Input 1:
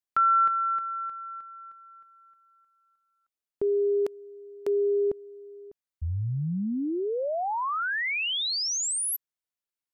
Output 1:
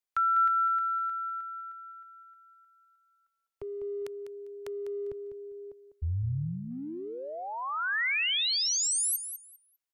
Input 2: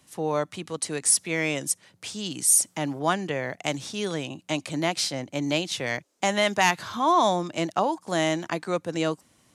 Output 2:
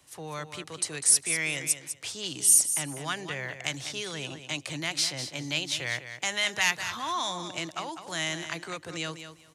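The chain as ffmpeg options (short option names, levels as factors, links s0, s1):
-filter_complex "[0:a]equalizer=f=210:w=2.3:g=-12.5,acrossover=split=190|1400|2200[s0][s1][s2][s3];[s1]acompressor=threshold=0.0112:ratio=6:attack=0.46:release=36:knee=1:detection=rms[s4];[s0][s4][s2][s3]amix=inputs=4:normalize=0,aecho=1:1:200|400|600:0.316|0.0601|0.0114"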